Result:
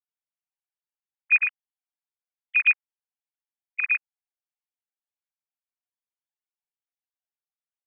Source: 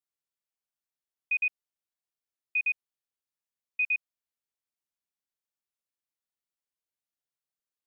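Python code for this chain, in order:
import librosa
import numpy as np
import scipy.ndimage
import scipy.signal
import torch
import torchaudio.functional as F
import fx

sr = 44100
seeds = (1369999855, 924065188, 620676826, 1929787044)

y = fx.sine_speech(x, sr)
y = F.gain(torch.from_numpy(y), 7.0).numpy()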